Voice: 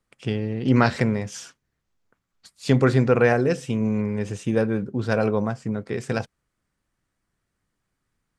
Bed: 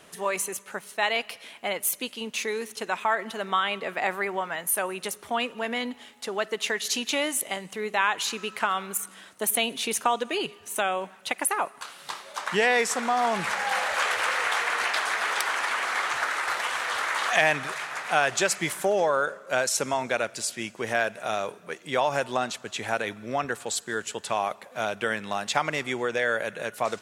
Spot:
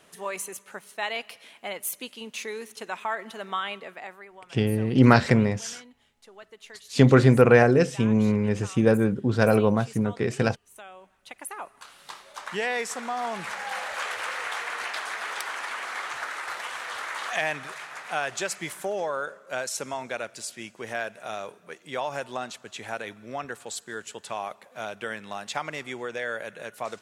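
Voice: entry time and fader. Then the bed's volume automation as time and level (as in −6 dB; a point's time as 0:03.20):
4.30 s, +2.0 dB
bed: 0:03.71 −5 dB
0:04.29 −19 dB
0:10.93 −19 dB
0:11.96 −6 dB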